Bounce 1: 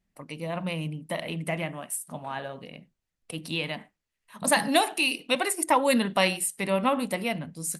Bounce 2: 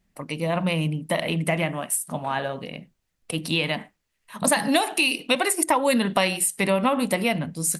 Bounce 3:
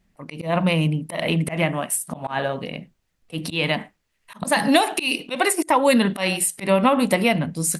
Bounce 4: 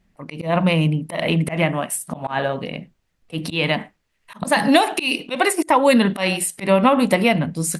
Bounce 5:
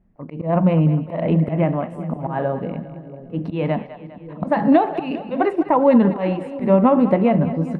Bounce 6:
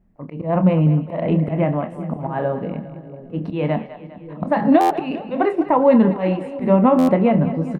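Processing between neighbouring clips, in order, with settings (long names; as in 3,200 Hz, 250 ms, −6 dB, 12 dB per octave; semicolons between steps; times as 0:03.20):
downward compressor 4 to 1, threshold −26 dBFS, peak gain reduction 9 dB; level +8 dB
high-shelf EQ 5,600 Hz −4.5 dB; volume swells 125 ms; level +4.5 dB
high-shelf EQ 5,800 Hz −5.5 dB; level +2.5 dB
Bessel low-pass filter 730 Hz, order 2; echo with a time of its own for lows and highs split 500 Hz, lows 679 ms, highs 202 ms, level −13 dB; level +2.5 dB
double-tracking delay 27 ms −11 dB; buffer that repeats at 0:04.80/0:06.98, samples 512, times 8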